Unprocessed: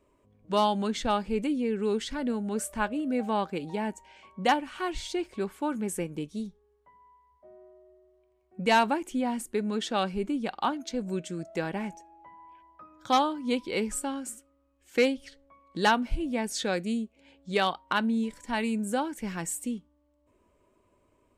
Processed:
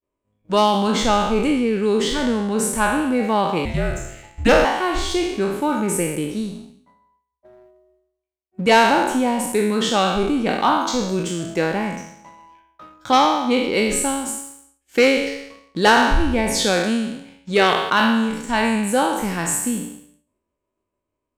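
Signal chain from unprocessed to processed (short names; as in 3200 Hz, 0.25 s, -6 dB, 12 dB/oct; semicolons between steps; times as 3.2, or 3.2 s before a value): spectral trails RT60 0.96 s; 3.65–4.65 frequency shift -260 Hz; 13.09–13.73 high shelf 9200 Hz -> 5400 Hz -10 dB; sample leveller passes 1; expander -54 dBFS; gain +4.5 dB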